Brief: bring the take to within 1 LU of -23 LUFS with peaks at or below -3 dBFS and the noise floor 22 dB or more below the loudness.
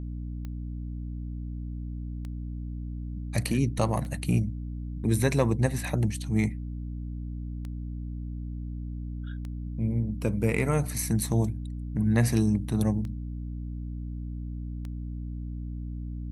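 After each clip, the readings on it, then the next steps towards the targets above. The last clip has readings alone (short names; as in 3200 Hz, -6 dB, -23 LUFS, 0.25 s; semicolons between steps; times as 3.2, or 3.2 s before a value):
clicks 9; hum 60 Hz; harmonics up to 300 Hz; hum level -32 dBFS; loudness -30.5 LUFS; peak -10.0 dBFS; loudness target -23.0 LUFS
-> de-click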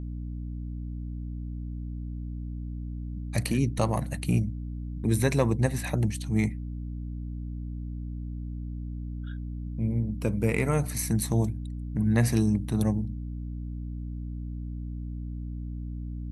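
clicks 0; hum 60 Hz; harmonics up to 300 Hz; hum level -32 dBFS
-> notches 60/120/180/240/300 Hz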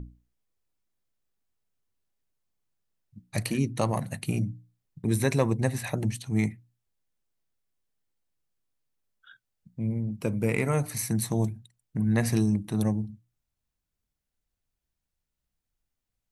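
hum none; loudness -28.5 LUFS; peak -10.5 dBFS; loudness target -23.0 LUFS
-> gain +5.5 dB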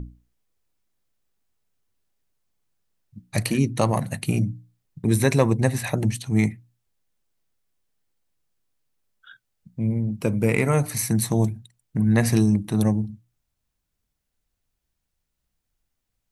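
loudness -23.0 LUFS; peak -5.0 dBFS; noise floor -79 dBFS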